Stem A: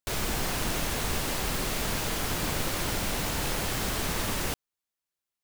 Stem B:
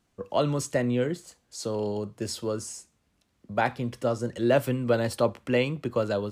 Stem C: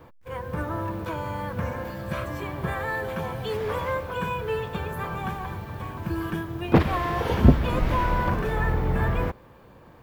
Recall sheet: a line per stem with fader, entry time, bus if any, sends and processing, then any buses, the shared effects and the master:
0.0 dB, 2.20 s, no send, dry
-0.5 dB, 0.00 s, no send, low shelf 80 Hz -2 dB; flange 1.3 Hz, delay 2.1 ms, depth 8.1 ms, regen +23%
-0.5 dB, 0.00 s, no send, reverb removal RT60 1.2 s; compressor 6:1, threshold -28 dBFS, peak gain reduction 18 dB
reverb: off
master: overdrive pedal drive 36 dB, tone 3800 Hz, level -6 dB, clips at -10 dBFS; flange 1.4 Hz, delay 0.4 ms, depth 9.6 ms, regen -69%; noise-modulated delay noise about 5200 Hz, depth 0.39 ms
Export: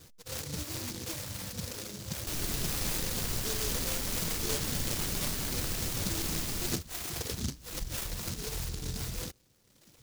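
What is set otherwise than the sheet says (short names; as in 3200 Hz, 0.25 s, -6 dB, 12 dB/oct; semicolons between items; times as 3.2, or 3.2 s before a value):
stem B -0.5 dB -> -11.0 dB; master: missing overdrive pedal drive 36 dB, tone 3800 Hz, level -6 dB, clips at -10 dBFS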